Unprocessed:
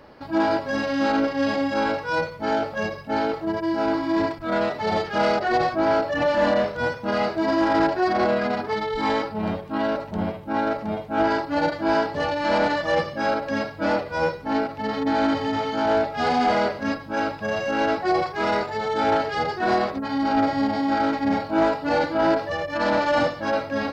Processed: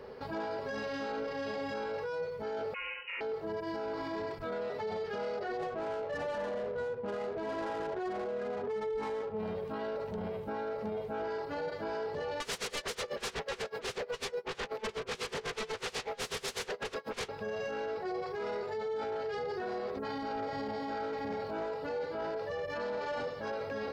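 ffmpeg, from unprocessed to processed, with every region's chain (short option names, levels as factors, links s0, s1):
-filter_complex "[0:a]asettb=1/sr,asplit=3[s0][s1][s2];[s0]atrim=end=2.744[s3];[s1]atrim=start=2.74:end=3.21,asetpts=PTS-STARTPTS,afade=t=in:d=0.004:c=qsin,afade=t=out:st=0.466:d=0.004:c=qsin,lowpass=f=2500:t=q:w=0.5098,lowpass=f=2500:t=q:w=0.6013,lowpass=f=2500:t=q:w=0.9,lowpass=f=2500:t=q:w=2.563,afreqshift=-2900,acompressor=threshold=0.0501:ratio=6:attack=3.2:release=140:knee=1:detection=peak,aeval=exprs='val(0)*sin(2*PI*170*n/s)':c=same[s4];[s2]atrim=start=3.206[s5];[s3][s4]acrossfade=d=0.004:c1=hsin:c2=qsin[s6];[s6][s5]acrossfade=d=0.004:c1=qsin:c2=hsin,asettb=1/sr,asplit=3[s7][s8][s9];[s7]atrim=end=5.584[s10];[s8]atrim=start=5.58:end=9.38,asetpts=PTS-STARTPTS,afade=t=in:d=0.004:c=qsin,afade=t=out:st=3.796:d=0.004:c=qsin,bandreject=f=60:t=h:w=6,bandreject=f=120:t=h:w=6,bandreject=f=180:t=h:w=6,bandreject=f=240:t=h:w=6,bandreject=f=300:t=h:w=6,bandreject=f=360:t=h:w=6,bandreject=f=420:t=h:w=6,bandreject=f=480:t=h:w=6,adynamicsmooth=sensitivity=2.5:basefreq=860[s11];[s9]atrim=start=9.376[s12];[s10][s11]acrossfade=d=0.004:c1=hsin:c2=qsin[s13];[s13][s12]acrossfade=d=0.004:c1=qsin:c2=hsin,asettb=1/sr,asplit=3[s14][s15][s16];[s14]atrim=end=12.404[s17];[s15]atrim=start=12.4:end=17.29,asetpts=PTS-STARTPTS,afade=t=in:d=0.004:c=qsin,afade=t=out:st=4.886:d=0.004:c=qsin,highpass=310,aeval=exprs='0.282*sin(PI/2*7.94*val(0)/0.282)':c=same,aeval=exprs='val(0)*pow(10,-31*(0.5-0.5*cos(2*PI*8.1*n/s))/20)':c=same[s18];[s16]atrim=start=17.286[s19];[s17][s18]acrossfade=d=0.004:c1=hsin:c2=qsin[s20];[s20][s19]acrossfade=d=0.004:c1=qsin:c2=hsin,superequalizer=6b=0.447:7b=3.55,acompressor=threshold=0.0501:ratio=6,alimiter=level_in=1.33:limit=0.0631:level=0:latency=1:release=13,volume=0.75,volume=0.668"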